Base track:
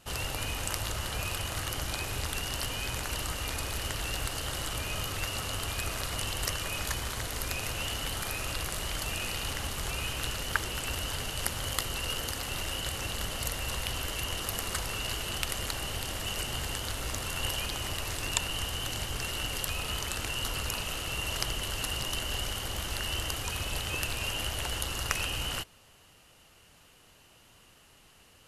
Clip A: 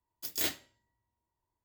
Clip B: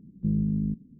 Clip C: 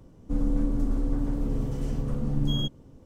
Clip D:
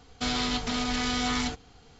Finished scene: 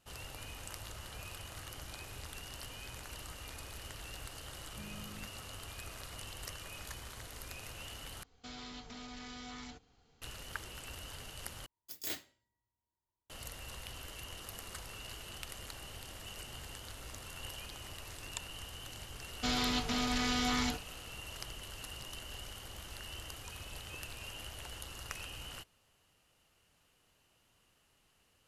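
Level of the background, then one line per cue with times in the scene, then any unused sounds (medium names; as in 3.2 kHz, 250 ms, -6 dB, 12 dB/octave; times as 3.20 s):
base track -13 dB
4.53 s: add B -16.5 dB + high-pass 300 Hz
8.23 s: replace with D -14.5 dB + compression 1.5:1, threshold -37 dBFS
11.66 s: replace with A -8 dB
19.22 s: add D -4.5 dB
not used: C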